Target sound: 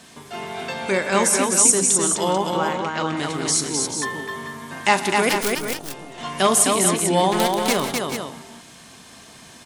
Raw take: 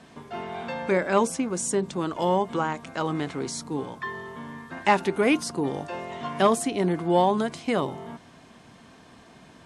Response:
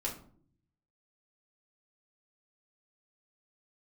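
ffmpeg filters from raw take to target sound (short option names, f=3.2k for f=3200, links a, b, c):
-filter_complex "[0:a]asettb=1/sr,asplit=3[a][b][c];[a]atrim=end=2.314[d];[b]atrim=start=2.31:end=3.17,asetpts=PTS-STARTPTS,afade=t=in:d=0.004:c=qsin,afade=t=out:st=0.856:d=0.004:c=qsin,lowpass=4.1k[e];[c]atrim=start=3.166[f];[d][e]acrossfade=d=0.004:c1=hsin:c2=qsin[g];[g][f]acrossfade=d=0.004:c1=qsin:c2=hsin,asplit=3[h][i][j];[h]afade=t=out:st=7.31:d=0.02[k];[i]acrusher=bits=3:mix=0:aa=0.5,afade=t=in:st=7.31:d=0.02,afade=t=out:st=7.72:d=0.02[l];[j]afade=t=in:st=7.72:d=0.02[m];[k][l][m]amix=inputs=3:normalize=0,crystalizer=i=5:c=0,asettb=1/sr,asplit=3[n][o][p];[n]atrim=end=5.294[q];[o]atrim=start=5.29:end=6.18,asetpts=PTS-STARTPTS,afade=t=in:d=0.004:c=qsin,afade=t=out:st=0.886:d=0.004:c=qsin,aeval=exprs='0.473*(cos(1*acos(clip(val(0)/0.473,-1,1)))-cos(1*PI/2))+0.211*(cos(3*acos(clip(val(0)/0.473,-1,1)))-cos(3*PI/2))+0.0473*(cos(4*acos(clip(val(0)/0.473,-1,1)))-cos(4*PI/2))':c=same[r];[p]atrim=start=6.176[s];[q][r]acrossfade=d=0.004:c1=hsin:c2=qsin[t];[t][s]acrossfade=d=0.004:c1=qsin:c2=hsin,asplit=2[u][v];[v]aecho=0:1:41|128|168|257|413|439:0.211|0.126|0.188|0.668|0.168|0.398[w];[u][w]amix=inputs=2:normalize=0"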